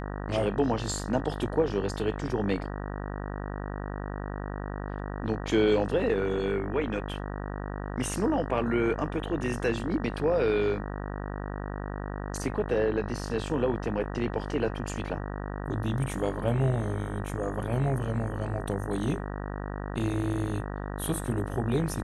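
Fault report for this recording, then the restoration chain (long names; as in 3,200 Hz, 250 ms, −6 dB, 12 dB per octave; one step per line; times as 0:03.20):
mains buzz 50 Hz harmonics 38 −35 dBFS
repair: hum removal 50 Hz, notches 38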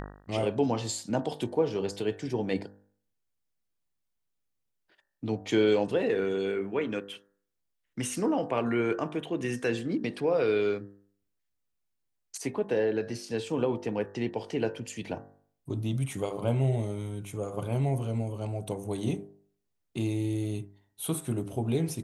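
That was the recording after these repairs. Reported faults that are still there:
none of them is left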